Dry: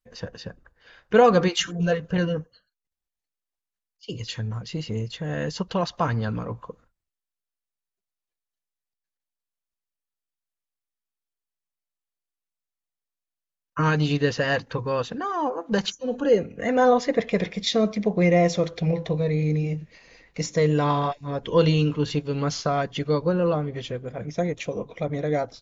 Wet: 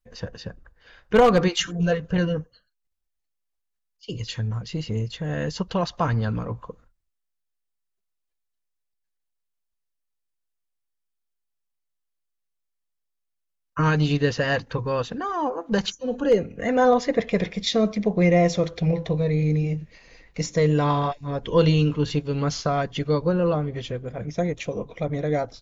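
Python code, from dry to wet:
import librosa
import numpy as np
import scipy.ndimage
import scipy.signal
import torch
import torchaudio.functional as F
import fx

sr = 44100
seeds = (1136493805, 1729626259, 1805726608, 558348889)

y = np.minimum(x, 2.0 * 10.0 ** (-10.5 / 20.0) - x)
y = fx.low_shelf(y, sr, hz=69.0, db=10.5)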